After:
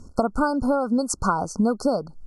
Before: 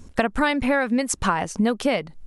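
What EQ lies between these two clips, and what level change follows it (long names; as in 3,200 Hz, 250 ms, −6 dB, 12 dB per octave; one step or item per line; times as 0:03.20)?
linear-phase brick-wall band-stop 1,500–4,200 Hz
Bessel low-pass filter 9,900 Hz
0.0 dB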